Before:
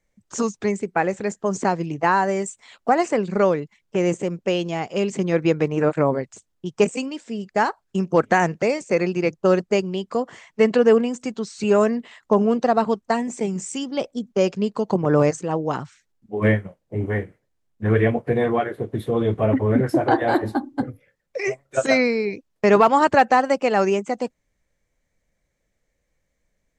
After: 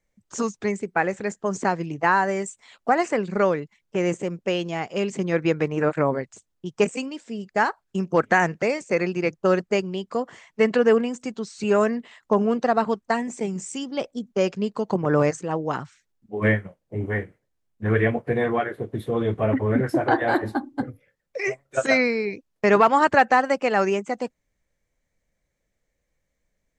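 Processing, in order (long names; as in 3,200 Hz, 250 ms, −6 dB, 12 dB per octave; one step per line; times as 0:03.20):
dynamic equaliser 1,700 Hz, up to +5 dB, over −36 dBFS, Q 1.2
level −3 dB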